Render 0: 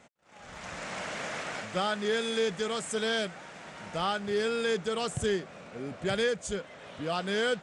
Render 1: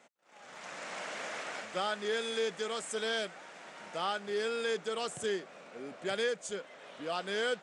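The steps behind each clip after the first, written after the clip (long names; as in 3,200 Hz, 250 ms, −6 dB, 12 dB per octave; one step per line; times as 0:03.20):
high-pass filter 290 Hz 12 dB per octave
level −3.5 dB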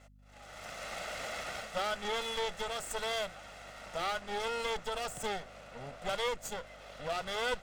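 lower of the sound and its delayed copy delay 1.5 ms
mains hum 50 Hz, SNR 22 dB
level +1.5 dB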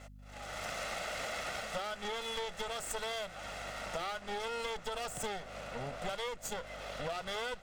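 downward compressor 6 to 1, threshold −43 dBFS, peak gain reduction 14 dB
level +7 dB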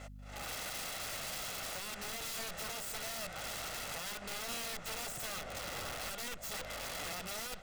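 brickwall limiter −33.5 dBFS, peak gain reduction 9.5 dB
wrap-around overflow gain 39 dB
level +3 dB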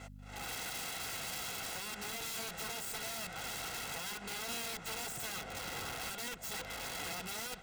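notch comb filter 600 Hz
level +1.5 dB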